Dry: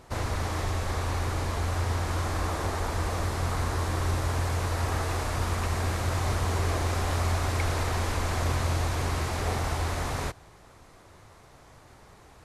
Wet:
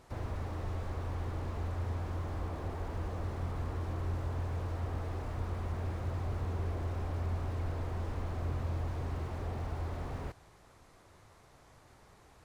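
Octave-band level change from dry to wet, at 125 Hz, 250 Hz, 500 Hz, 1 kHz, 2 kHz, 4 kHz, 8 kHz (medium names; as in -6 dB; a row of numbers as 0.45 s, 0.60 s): -7.0 dB, -7.5 dB, -9.5 dB, -13.0 dB, -16.0 dB, -19.0 dB, -23.0 dB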